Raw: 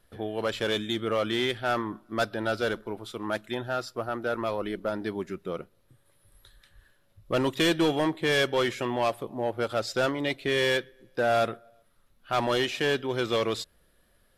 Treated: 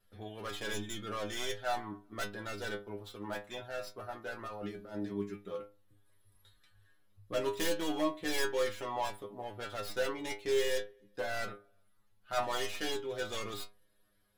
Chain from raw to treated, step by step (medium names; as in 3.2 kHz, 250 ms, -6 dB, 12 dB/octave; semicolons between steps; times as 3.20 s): tracing distortion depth 0.22 ms; 4.47–5.13 s: compressor with a negative ratio -35 dBFS, ratio -1; inharmonic resonator 100 Hz, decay 0.33 s, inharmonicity 0.002; trim +1.5 dB